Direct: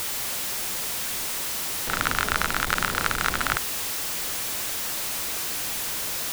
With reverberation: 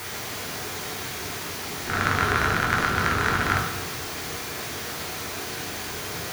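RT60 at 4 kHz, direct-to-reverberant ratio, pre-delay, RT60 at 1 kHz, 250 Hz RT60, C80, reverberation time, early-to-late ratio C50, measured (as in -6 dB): 0.80 s, -2.5 dB, 3 ms, 1.0 s, 1.3 s, 6.5 dB, 1.1 s, 3.0 dB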